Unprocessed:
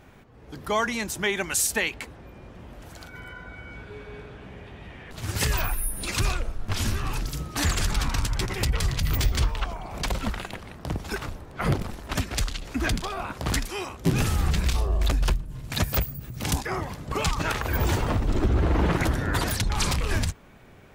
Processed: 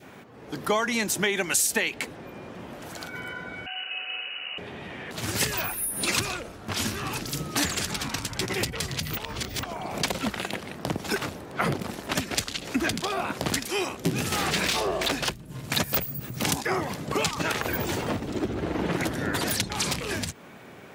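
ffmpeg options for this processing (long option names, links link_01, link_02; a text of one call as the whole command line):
ffmpeg -i in.wav -filter_complex "[0:a]asettb=1/sr,asplit=3[link_01][link_02][link_03];[link_01]atrim=end=3.664[link_04];[link_02]atrim=start=3.66:end=4.58,asetpts=PTS-STARTPTS,afade=type=in:duration=0.004:curve=qsin,afade=type=out:start_time=0.916:duration=0.004:curve=qsin,lowpass=frequency=2600:width_type=q:width=0.5098,lowpass=frequency=2600:width_type=q:width=0.6013,lowpass=frequency=2600:width_type=q:width=0.9,lowpass=frequency=2600:width_type=q:width=2.563,afreqshift=-3000[link_05];[link_03]atrim=start=4.576[link_06];[link_04][link_05]acrossfade=duration=0.004:curve1=hsin:curve2=qsin[link_07];[link_07][link_06]acrossfade=duration=0.004:curve1=qsin:curve2=hsin,asettb=1/sr,asplit=3[link_08][link_09][link_10];[link_08]atrim=end=14.324[link_11];[link_09]atrim=start=14.32:end=15.29,asetpts=PTS-STARTPTS,afade=type=in:duration=0.004:curve=qsin,afade=type=out:start_time=0.966:duration=0.004:curve=qsin,asplit=2[link_12][link_13];[link_13]highpass=frequency=720:poles=1,volume=21dB,asoftclip=type=tanh:threshold=-12.5dB[link_14];[link_12][link_14]amix=inputs=2:normalize=0,lowpass=frequency=4700:poles=1,volume=-6dB[link_15];[link_10]atrim=start=15.286[link_16];[link_11][link_15]acrossfade=duration=0.004:curve1=hsin:curve2=qsin[link_17];[link_17][link_16]acrossfade=duration=0.004:curve1=qsin:curve2=hsin,asplit=3[link_18][link_19][link_20];[link_18]atrim=end=9.172[link_21];[link_19]atrim=start=9.168:end=9.632,asetpts=PTS-STARTPTS,areverse[link_22];[link_20]atrim=start=9.628[link_23];[link_21][link_22]acrossfade=duration=0.004:curve1=hsin:curve2=hsin[link_24];[link_24][link_23]acrossfade=duration=0.004:curve1=hsin:curve2=hsin,acompressor=threshold=-27dB:ratio=6,adynamicequalizer=threshold=0.00316:dfrequency=1100:dqfactor=1.3:tfrequency=1100:tqfactor=1.3:attack=5:release=100:ratio=0.375:range=2.5:mode=cutabove:tftype=bell,highpass=170,volume=7dB" out.wav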